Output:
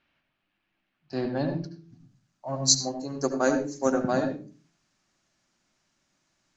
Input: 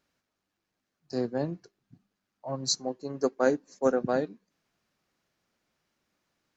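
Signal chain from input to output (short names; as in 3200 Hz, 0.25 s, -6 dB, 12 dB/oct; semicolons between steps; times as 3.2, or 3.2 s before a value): bell 460 Hz -12.5 dB 0.22 oct; de-hum 83.13 Hz, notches 7; in parallel at -8 dB: soft clip -20 dBFS, distortion -14 dB; on the sum: low-pass sweep 2800 Hz -> 7000 Hz, 1.05–2.1; on a send at -5.5 dB: air absorption 92 m + reverb RT60 0.35 s, pre-delay 69 ms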